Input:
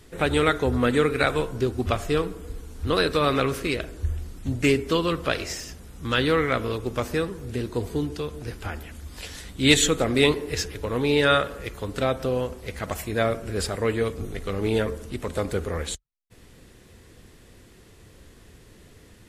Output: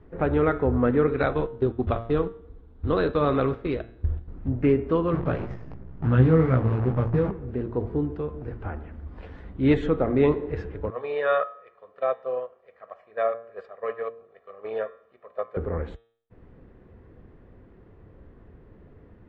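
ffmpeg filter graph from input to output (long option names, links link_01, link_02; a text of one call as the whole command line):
ffmpeg -i in.wav -filter_complex "[0:a]asettb=1/sr,asplit=3[link_01][link_02][link_03];[link_01]atrim=end=1.074[link_04];[link_02]atrim=start=1.07:end=4.28,asetpts=PTS-STARTPTS,afade=type=in:duration=0.004:curve=qsin,afade=type=out:start_time=3.206:duration=0.004:curve=qsin,agate=range=-11dB:threshold=-30dB:ratio=16:release=100:detection=peak,equalizer=frequency=3700:width_type=o:width=0.54:gain=11.5[link_05];[link_03]atrim=start=4.276[link_06];[link_04][link_05]acrossfade=duration=0.004:curve1=hsin:curve2=qsin[link_07];[link_07][link_06]acrossfade=duration=0.004:curve1=qsin:curve2=hsin,asettb=1/sr,asplit=3[link_08][link_09][link_10];[link_08]atrim=end=5.134[link_11];[link_09]atrim=start=5.13:end=7.31,asetpts=PTS-STARTPTS,afade=type=in:duration=0.004:curve=qsin,afade=type=out:start_time=2.176:duration=0.004:curve=qsin,equalizer=frequency=130:width_type=o:width=1.5:gain=14.5,acrusher=bits=5:dc=4:mix=0:aa=0.000001,flanger=delay=15.5:depth=3.4:speed=2.8[link_12];[link_10]atrim=start=7.306[link_13];[link_11][link_12]acrossfade=duration=0.004:curve1=hsin:curve2=qsin[link_14];[link_14][link_13]acrossfade=duration=0.004:curve1=qsin:curve2=hsin,asettb=1/sr,asplit=3[link_15][link_16][link_17];[link_15]atrim=end=10.904[link_18];[link_16]atrim=start=10.9:end=15.57,asetpts=PTS-STARTPTS,afade=type=in:duration=0.004:curve=qsin,afade=type=out:start_time=4.666:duration=0.004:curve=qsin,agate=range=-12dB:threshold=-26dB:ratio=16:release=100:detection=peak,highpass=640,lowpass=7800,aecho=1:1:1.7:0.7,atrim=end_sample=205947[link_19];[link_17]atrim=start=15.566[link_20];[link_18][link_19]acrossfade=duration=0.004:curve1=hsin:curve2=qsin[link_21];[link_21][link_20]acrossfade=duration=0.004:curve1=qsin:curve2=hsin,lowpass=1300,aemphasis=mode=reproduction:type=75fm,bandreject=frequency=115.3:width_type=h:width=4,bandreject=frequency=230.6:width_type=h:width=4,bandreject=frequency=345.9:width_type=h:width=4,bandreject=frequency=461.2:width_type=h:width=4,bandreject=frequency=576.5:width_type=h:width=4,bandreject=frequency=691.8:width_type=h:width=4,bandreject=frequency=807.1:width_type=h:width=4,bandreject=frequency=922.4:width_type=h:width=4,bandreject=frequency=1037.7:width_type=h:width=4,bandreject=frequency=1153:width_type=h:width=4,bandreject=frequency=1268.3:width_type=h:width=4,bandreject=frequency=1383.6:width_type=h:width=4,bandreject=frequency=1498.9:width_type=h:width=4,bandreject=frequency=1614.2:width_type=h:width=4,bandreject=frequency=1729.5:width_type=h:width=4,bandreject=frequency=1844.8:width_type=h:width=4,bandreject=frequency=1960.1:width_type=h:width=4,bandreject=frequency=2075.4:width_type=h:width=4,bandreject=frequency=2190.7:width_type=h:width=4,bandreject=frequency=2306:width_type=h:width=4,bandreject=frequency=2421.3:width_type=h:width=4,bandreject=frequency=2536.6:width_type=h:width=4,bandreject=frequency=2651.9:width_type=h:width=4,bandreject=frequency=2767.2:width_type=h:width=4,bandreject=frequency=2882.5:width_type=h:width=4,bandreject=frequency=2997.8:width_type=h:width=4,bandreject=frequency=3113.1:width_type=h:width=4,bandreject=frequency=3228.4:width_type=h:width=4,bandreject=frequency=3343.7:width_type=h:width=4,bandreject=frequency=3459:width_type=h:width=4,bandreject=frequency=3574.3:width_type=h:width=4,bandreject=frequency=3689.6:width_type=h:width=4,bandreject=frequency=3804.9:width_type=h:width=4,bandreject=frequency=3920.2:width_type=h:width=4" out.wav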